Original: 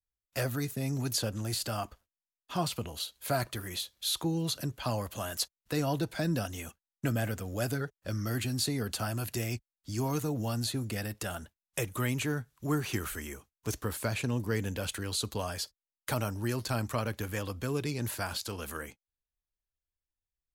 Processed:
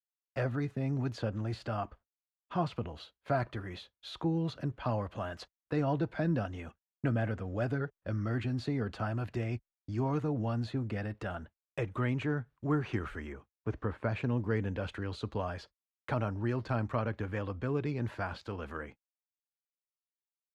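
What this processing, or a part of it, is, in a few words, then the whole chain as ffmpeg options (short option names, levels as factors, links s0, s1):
hearing-loss simulation: -filter_complex "[0:a]asettb=1/sr,asplit=3[s0][s1][s2];[s0]atrim=end=13.324[s3];[s1]atrim=start=13.32:end=14.09,asetpts=PTS-STARTPTS,afade=t=in:d=0.004:c=qsin,afade=t=out:st=0.766:d=0.004:c=qsin,acrossover=split=2700[s4][s5];[s5]acompressor=threshold=0.00251:ratio=4:attack=1:release=60[s6];[s4][s6]amix=inputs=2:normalize=0[s7];[s2]atrim=start=14.086[s8];[s3][s7]acrossfade=d=0.004:c1=hsin:c2=qsin[s9];[s9][s8]acrossfade=d=0.004:c1=qsin:c2=hsin,lowpass=1900,agate=range=0.0224:threshold=0.00355:ratio=3:detection=peak"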